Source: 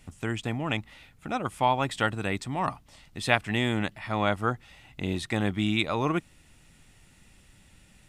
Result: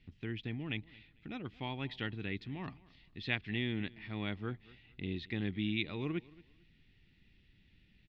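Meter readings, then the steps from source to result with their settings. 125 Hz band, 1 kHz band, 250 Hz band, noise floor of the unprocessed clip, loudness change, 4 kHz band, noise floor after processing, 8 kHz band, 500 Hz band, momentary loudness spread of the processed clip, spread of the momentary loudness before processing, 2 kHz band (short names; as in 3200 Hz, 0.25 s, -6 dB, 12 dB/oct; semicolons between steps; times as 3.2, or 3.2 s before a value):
-8.5 dB, -21.0 dB, -8.5 dB, -58 dBFS, -10.5 dB, -9.0 dB, -67 dBFS, under -30 dB, -14.0 dB, 12 LU, 9 LU, -10.5 dB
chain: steep low-pass 4300 Hz 36 dB/oct; band shelf 870 Hz -13 dB; feedback echo 0.224 s, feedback 24%, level -22 dB; gain -8.5 dB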